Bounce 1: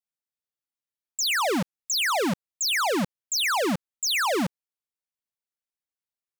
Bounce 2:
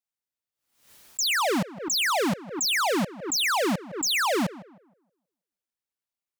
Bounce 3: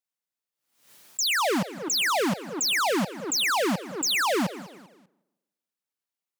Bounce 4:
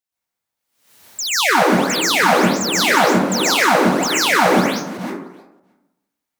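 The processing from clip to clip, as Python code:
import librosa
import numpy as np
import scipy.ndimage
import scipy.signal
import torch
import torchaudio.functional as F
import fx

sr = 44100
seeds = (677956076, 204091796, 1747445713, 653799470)

y1 = fx.echo_tape(x, sr, ms=158, feedback_pct=37, wet_db=-11.5, lp_hz=1600.0, drive_db=28.0, wow_cents=20)
y1 = fx.pre_swell(y1, sr, db_per_s=100.0)
y2 = scipy.signal.sosfilt(scipy.signal.butter(2, 120.0, 'highpass', fs=sr, output='sos'), y1)
y2 = fx.echo_feedback(y2, sr, ms=197, feedback_pct=40, wet_db=-17.5)
y3 = fx.reverse_delay(y2, sr, ms=311, wet_db=-10.0)
y3 = fx.rev_plate(y3, sr, seeds[0], rt60_s=0.85, hf_ratio=0.35, predelay_ms=110, drr_db=-8.5)
y3 = y3 * librosa.db_to_amplitude(1.5)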